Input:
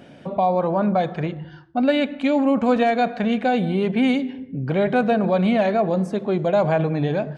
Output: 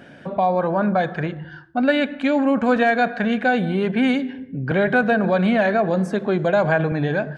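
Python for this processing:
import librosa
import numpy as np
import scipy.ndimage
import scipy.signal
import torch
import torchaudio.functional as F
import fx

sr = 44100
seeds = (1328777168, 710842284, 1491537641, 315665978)

y = fx.peak_eq(x, sr, hz=1600.0, db=11.5, octaves=0.38)
y = fx.band_squash(y, sr, depth_pct=40, at=(4.71, 6.92))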